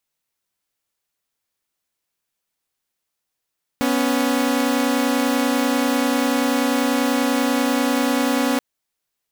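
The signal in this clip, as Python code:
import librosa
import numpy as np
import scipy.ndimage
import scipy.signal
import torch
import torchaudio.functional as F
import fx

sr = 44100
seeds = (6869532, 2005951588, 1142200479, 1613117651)

y = fx.chord(sr, length_s=4.78, notes=(59, 61), wave='saw', level_db=-17.5)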